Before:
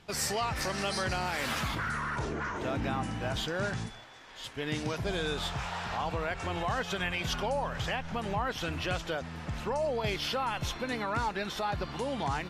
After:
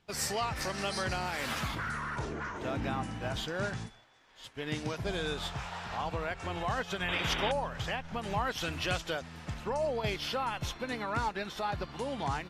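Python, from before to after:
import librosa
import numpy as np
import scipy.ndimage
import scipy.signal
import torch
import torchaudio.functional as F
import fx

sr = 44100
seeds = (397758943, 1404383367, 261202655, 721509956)

y = fx.spec_paint(x, sr, seeds[0], shape='noise', start_s=7.08, length_s=0.44, low_hz=260.0, high_hz=3800.0, level_db=-34.0)
y = fx.high_shelf(y, sr, hz=2700.0, db=6.5, at=(8.23, 9.54))
y = fx.upward_expand(y, sr, threshold_db=-52.0, expansion=1.5)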